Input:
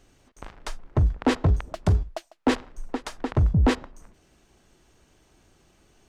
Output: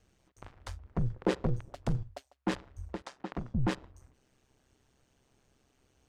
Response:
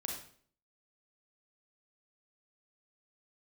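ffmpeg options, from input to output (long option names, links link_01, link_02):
-filter_complex "[0:a]asettb=1/sr,asplit=3[link_01][link_02][link_03];[link_01]atrim=end=1.004[link_04];[link_02]atrim=start=1:end=1.61,asetpts=PTS-STARTPTS,afade=type=in:duration=0.004:curve=qsin,afade=type=out:start_time=0.606:duration=0.004:curve=qsin,equalizer=frequency=440:width_type=o:width=0.23:gain=11.5[link_05];[link_03]atrim=start=1.606[link_06];[link_04][link_05]acrossfade=duration=0.004:curve1=hsin:curve2=qsin[link_07];[link_07][link_06]acrossfade=duration=0.004:curve1=qsin:curve2=hsin,asettb=1/sr,asplit=3[link_08][link_09][link_10];[link_08]atrim=end=3.024[link_11];[link_09]atrim=start=3.02:end=3.55,asetpts=PTS-STARTPTS,afade=type=in:duration=0.004:curve=qsin,afade=type=out:start_time=0.526:duration=0.004:curve=qsin,highpass=160,lowpass=7000[link_12];[link_10]atrim=start=3.546[link_13];[link_11][link_12]acrossfade=duration=0.004:curve1=hsin:curve2=qsin[link_14];[link_14][link_13]acrossfade=duration=0.004:curve1=qsin:curve2=hsin,aeval=exprs='val(0)*sin(2*PI*66*n/s)':channel_layout=same,volume=-7dB"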